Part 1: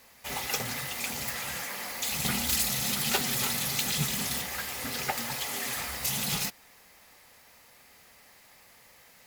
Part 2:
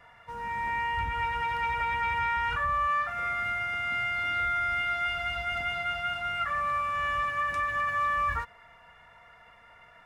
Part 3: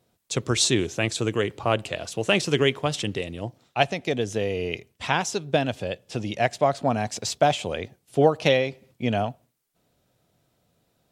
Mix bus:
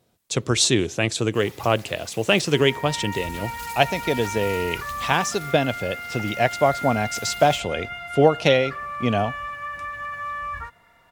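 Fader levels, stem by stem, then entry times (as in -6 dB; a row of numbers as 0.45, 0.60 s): -12.5, -3.0, +2.5 dB; 1.10, 2.25, 0.00 s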